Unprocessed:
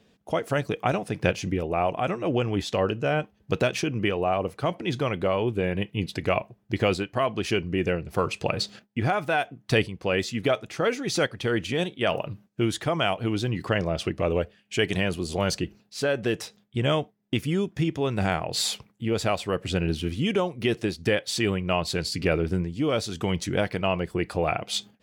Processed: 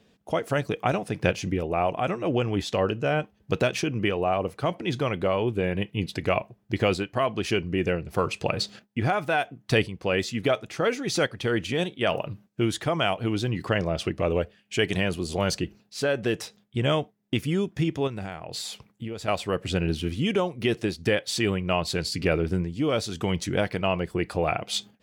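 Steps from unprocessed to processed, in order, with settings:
0:18.07–0:19.28: downward compressor 12 to 1, threshold −31 dBFS, peak gain reduction 12 dB

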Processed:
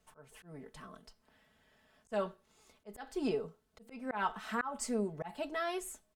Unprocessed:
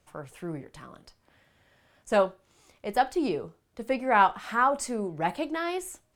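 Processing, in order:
notch filter 2,300 Hz, Q 15
comb filter 4.6 ms, depth 74%
volume swells 241 ms
level −6.5 dB

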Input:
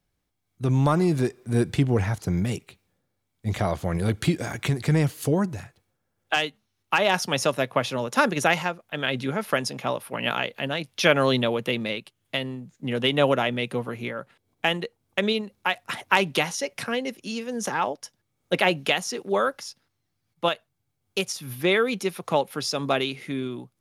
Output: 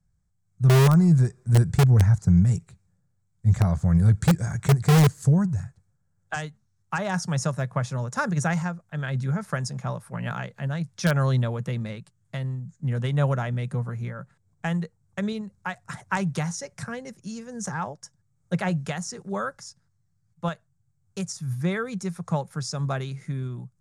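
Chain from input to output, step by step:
drawn EQ curve 170 Hz 0 dB, 270 Hz −20 dB, 1,600 Hz −13 dB, 2,900 Hz −28 dB, 7,800 Hz −6 dB, 12,000 Hz −26 dB
in parallel at −5 dB: wrap-around overflow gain 19 dB
on the sum: level +5 dB

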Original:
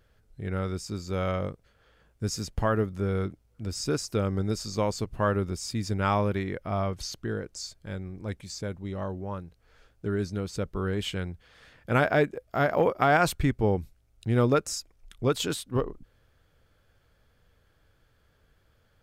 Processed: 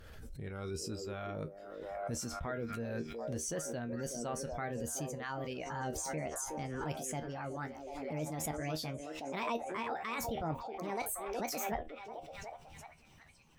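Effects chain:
gliding playback speed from 100% → 180%
reversed playback
downward compressor 12 to 1, threshold −35 dBFS, peak gain reduction 18 dB
reversed playback
reverb reduction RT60 0.84 s
tuned comb filter 78 Hz, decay 0.16 s, harmonics all, mix 80%
on a send: echo through a band-pass that steps 369 ms, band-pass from 410 Hz, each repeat 0.7 octaves, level −4 dB
on the sum: background raised ahead of every attack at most 28 dB per second
level +4 dB

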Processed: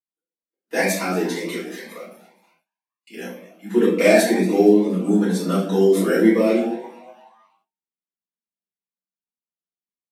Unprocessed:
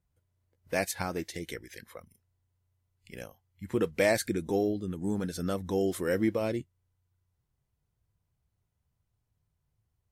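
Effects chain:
Butterworth high-pass 180 Hz 96 dB per octave
bass and treble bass +1 dB, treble −10 dB
on a send: echo with shifted repeats 235 ms, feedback 46%, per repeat +140 Hz, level −18 dB
on the sum: noise reduction from a noise print of the clip's start 9 dB
high-shelf EQ 3,100 Hz +8 dB
rectangular room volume 86 cubic metres, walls mixed, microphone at 3.2 metres
noise gate with hold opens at −49 dBFS
phaser whose notches keep moving one way rising 2 Hz

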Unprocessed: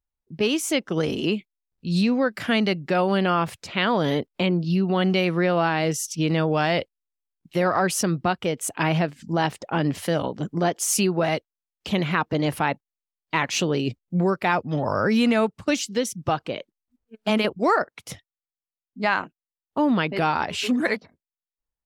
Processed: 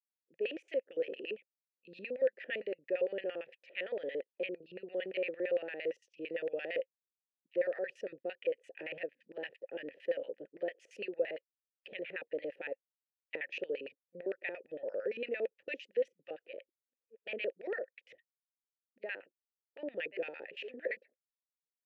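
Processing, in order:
auto-filter band-pass square 8.8 Hz 390–2,300 Hz
formant filter e
level +1.5 dB

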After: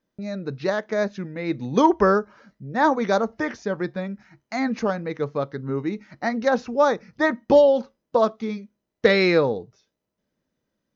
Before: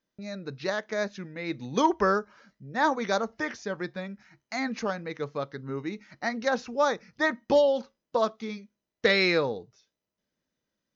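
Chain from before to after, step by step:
tilt shelving filter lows +4.5 dB, about 1,400 Hz
level +3.5 dB

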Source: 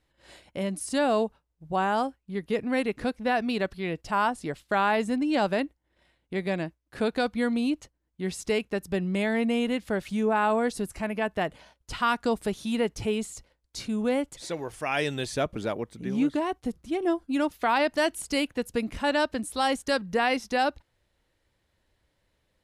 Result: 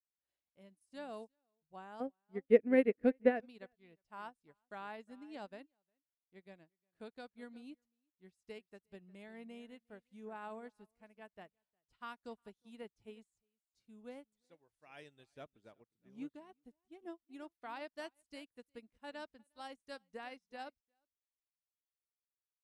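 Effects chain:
0:02.00–0:03.40: octave-band graphic EQ 125/250/500/1,000/2,000/4,000/8,000 Hz −4/+8/+11/−8/+9/−11/−10 dB
single-tap delay 358 ms −16.5 dB
expander for the loud parts 2.5 to 1, over −38 dBFS
level −6.5 dB

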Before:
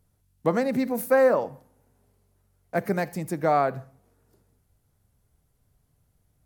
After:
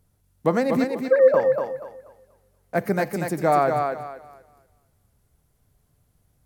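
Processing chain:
0:00.84–0:01.34: three sine waves on the formant tracks
feedback echo with a high-pass in the loop 241 ms, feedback 28%, high-pass 240 Hz, level −4.5 dB
level +2.5 dB

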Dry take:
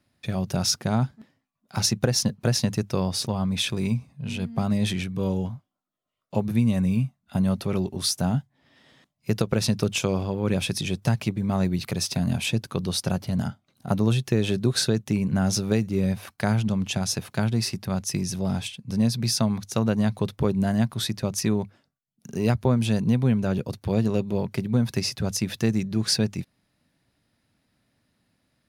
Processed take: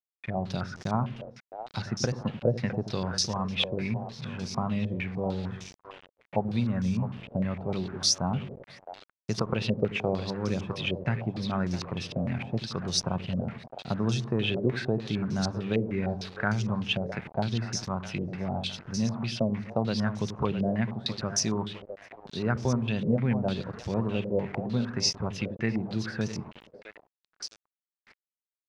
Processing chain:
echo with a time of its own for lows and highs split 420 Hz, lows 86 ms, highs 660 ms, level −9.5 dB
centre clipping without the shift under −37.5 dBFS
low-pass on a step sequencer 6.6 Hz 540–5,800 Hz
level −6.5 dB

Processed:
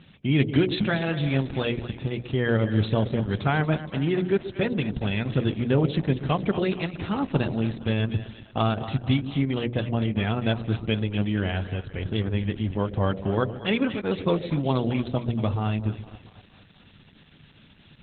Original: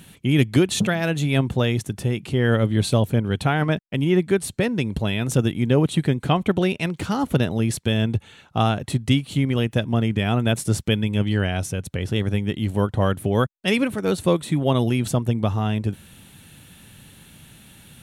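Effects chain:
mains-hum notches 60/120/180/240/300/360/420/480/540/600 Hz
echo with a time of its own for lows and highs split 590 Hz, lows 129 ms, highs 232 ms, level −11.5 dB
level −2.5 dB
Opus 8 kbit/s 48,000 Hz

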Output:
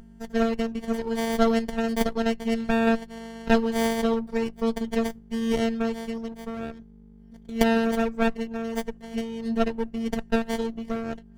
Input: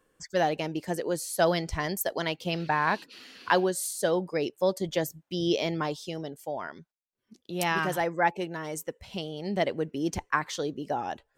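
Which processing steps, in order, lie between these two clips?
mains hum 50 Hz, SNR 15 dB
phases set to zero 227 Hz
windowed peak hold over 33 samples
level +3.5 dB

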